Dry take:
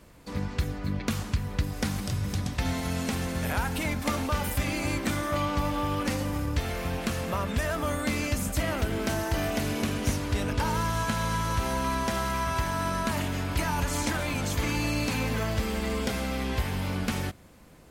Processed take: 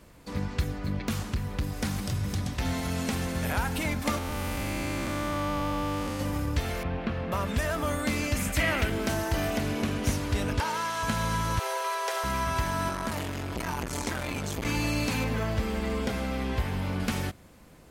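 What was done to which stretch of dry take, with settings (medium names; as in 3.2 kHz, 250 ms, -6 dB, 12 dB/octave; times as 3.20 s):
0.74–2.98 s: hard clipper -23.5 dBFS
4.18–6.20 s: spectral blur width 397 ms
6.83–7.32 s: distance through air 350 m
8.35–8.90 s: peaking EQ 2.2 kHz +9.5 dB 1.1 oct
9.57–10.04 s: treble shelf 4.7 kHz -6.5 dB
10.60–11.03 s: frequency weighting A
11.59–12.24 s: steep high-pass 370 Hz 96 dB/octave
12.89–14.65 s: transformer saturation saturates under 500 Hz
15.24–17.00 s: treble shelf 3.3 kHz -7 dB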